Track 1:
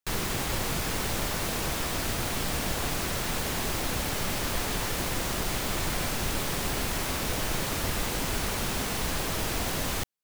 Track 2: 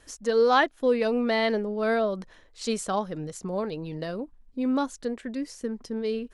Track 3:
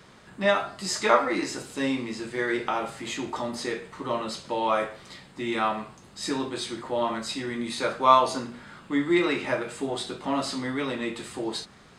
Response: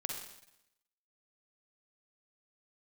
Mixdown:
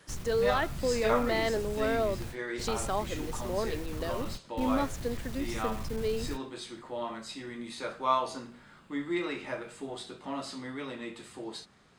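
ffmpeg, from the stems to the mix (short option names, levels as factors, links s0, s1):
-filter_complex "[0:a]acrossover=split=180[s0][s1];[s1]acompressor=threshold=0.00562:ratio=5[s2];[s0][s2]amix=inputs=2:normalize=0,asoftclip=type=hard:threshold=0.0355,volume=0.708[s3];[1:a]alimiter=limit=0.106:level=0:latency=1,highpass=f=250:w=0.5412,highpass=f=250:w=1.3066,volume=0.794,asplit=2[s4][s5];[2:a]volume=0.335[s6];[s5]apad=whole_len=451548[s7];[s3][s7]sidechaingate=range=0.0224:threshold=0.00282:ratio=16:detection=peak[s8];[s8][s4][s6]amix=inputs=3:normalize=0"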